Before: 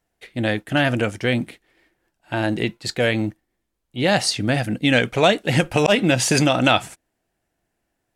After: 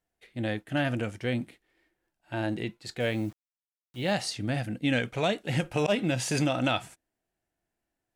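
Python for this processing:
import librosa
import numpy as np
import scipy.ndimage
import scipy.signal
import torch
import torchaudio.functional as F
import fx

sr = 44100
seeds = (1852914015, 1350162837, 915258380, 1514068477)

y = fx.hpss(x, sr, part='percussive', gain_db=-6)
y = fx.quant_dither(y, sr, seeds[0], bits=8, dither='none', at=(3.0, 4.13))
y = y * librosa.db_to_amplitude(-7.5)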